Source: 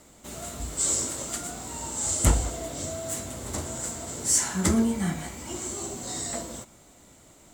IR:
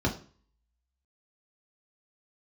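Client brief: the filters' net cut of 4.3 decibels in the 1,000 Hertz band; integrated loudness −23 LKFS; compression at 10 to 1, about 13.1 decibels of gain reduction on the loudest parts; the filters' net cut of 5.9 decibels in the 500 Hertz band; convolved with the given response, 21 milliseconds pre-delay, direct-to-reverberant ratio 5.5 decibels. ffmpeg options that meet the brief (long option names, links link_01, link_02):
-filter_complex "[0:a]equalizer=frequency=500:width_type=o:gain=-7.5,equalizer=frequency=1000:width_type=o:gain=-3,acompressor=threshold=-28dB:ratio=10,asplit=2[link_01][link_02];[1:a]atrim=start_sample=2205,adelay=21[link_03];[link_02][link_03]afir=irnorm=-1:irlink=0,volume=-15dB[link_04];[link_01][link_04]amix=inputs=2:normalize=0,volume=7.5dB"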